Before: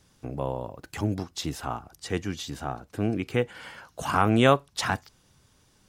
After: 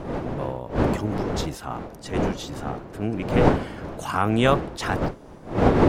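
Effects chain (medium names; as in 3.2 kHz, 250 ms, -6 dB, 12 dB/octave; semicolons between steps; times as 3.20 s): wind noise 490 Hz -25 dBFS; attacks held to a fixed rise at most 180 dB/s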